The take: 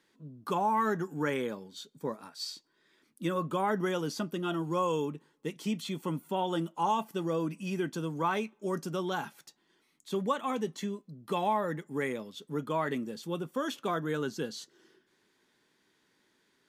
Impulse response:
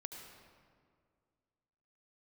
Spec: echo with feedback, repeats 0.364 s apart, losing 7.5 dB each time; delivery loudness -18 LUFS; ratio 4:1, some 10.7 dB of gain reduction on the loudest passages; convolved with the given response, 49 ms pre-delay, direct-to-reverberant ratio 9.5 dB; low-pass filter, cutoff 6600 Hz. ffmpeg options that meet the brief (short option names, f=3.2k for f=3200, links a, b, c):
-filter_complex "[0:a]lowpass=6.6k,acompressor=threshold=-37dB:ratio=4,aecho=1:1:364|728|1092|1456|1820:0.422|0.177|0.0744|0.0312|0.0131,asplit=2[a][b];[1:a]atrim=start_sample=2205,adelay=49[c];[b][c]afir=irnorm=-1:irlink=0,volume=-6.5dB[d];[a][d]amix=inputs=2:normalize=0,volume=22dB"